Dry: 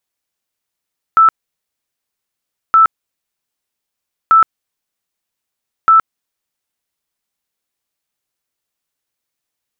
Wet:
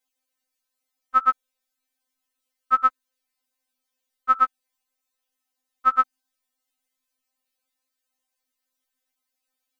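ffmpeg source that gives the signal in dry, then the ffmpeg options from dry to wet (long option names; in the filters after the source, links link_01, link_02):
-f lavfi -i "aevalsrc='0.596*sin(2*PI*1320*mod(t,1.57))*lt(mod(t,1.57),156/1320)':duration=6.28:sample_rate=44100"
-af "afftfilt=real='re*3.46*eq(mod(b,12),0)':imag='im*3.46*eq(mod(b,12),0)':win_size=2048:overlap=0.75"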